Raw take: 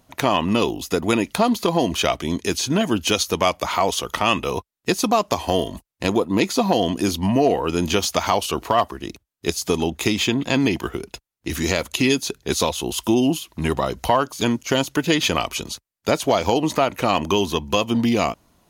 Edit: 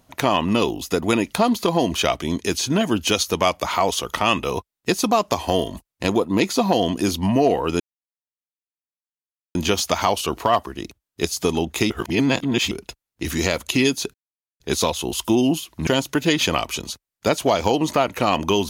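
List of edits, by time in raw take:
7.80 s: insert silence 1.75 s
10.15–10.96 s: reverse
12.39 s: insert silence 0.46 s
13.66–14.69 s: delete

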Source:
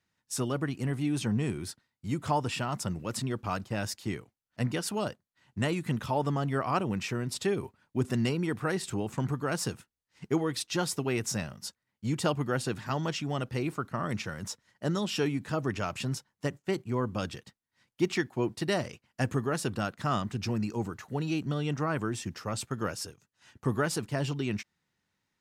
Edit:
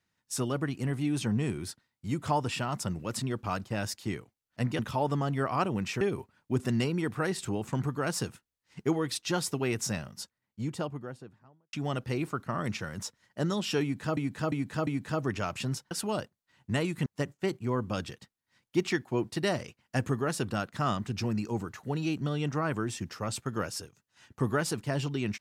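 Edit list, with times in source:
4.79–5.94 s: move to 16.31 s
7.16–7.46 s: delete
11.44–13.18 s: studio fade out
15.27–15.62 s: loop, 4 plays

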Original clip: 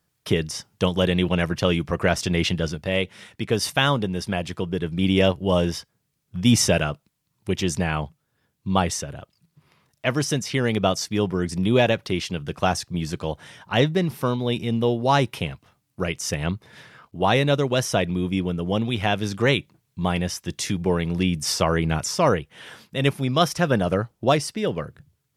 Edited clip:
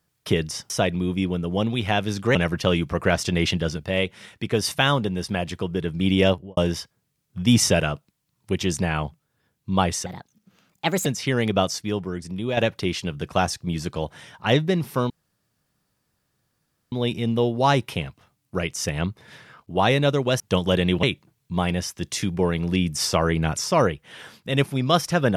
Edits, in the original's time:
0.70–1.33 s: swap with 17.85–19.50 s
5.26–5.55 s: studio fade out
9.04–10.33 s: speed 129%
10.90–11.84 s: fade out quadratic, to -8.5 dB
14.37 s: insert room tone 1.82 s

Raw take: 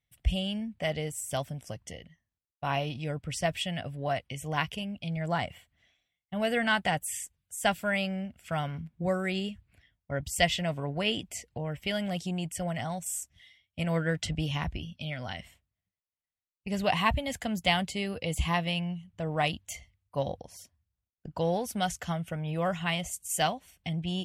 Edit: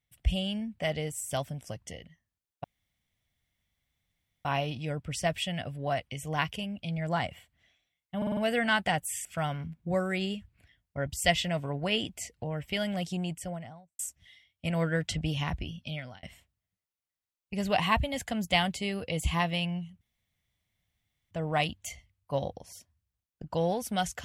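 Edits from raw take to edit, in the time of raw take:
2.64 s: insert room tone 1.81 s
6.36 s: stutter 0.05 s, 5 plays
7.24–8.39 s: delete
12.31–13.13 s: studio fade out
15.06–15.37 s: fade out
19.15 s: insert room tone 1.30 s

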